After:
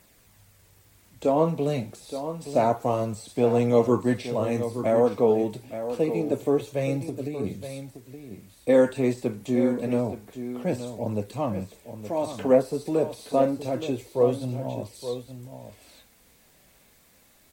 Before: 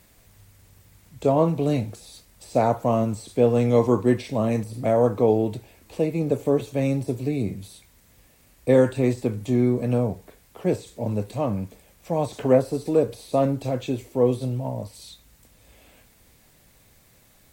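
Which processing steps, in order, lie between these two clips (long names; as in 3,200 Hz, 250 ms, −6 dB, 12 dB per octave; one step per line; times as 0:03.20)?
low-shelf EQ 140 Hz −8 dB
0:07.01–0:07.44: downward compressor, threshold −28 dBFS, peak gain reduction 7 dB
flanger 0.27 Hz, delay 0.1 ms, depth 5.3 ms, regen −52%
single-tap delay 871 ms −10.5 dB
level +3 dB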